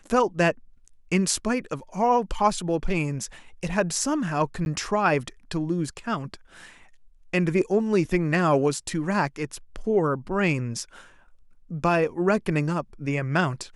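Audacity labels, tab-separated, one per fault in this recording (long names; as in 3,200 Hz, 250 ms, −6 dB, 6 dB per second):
4.650000	4.660000	drop-out 11 ms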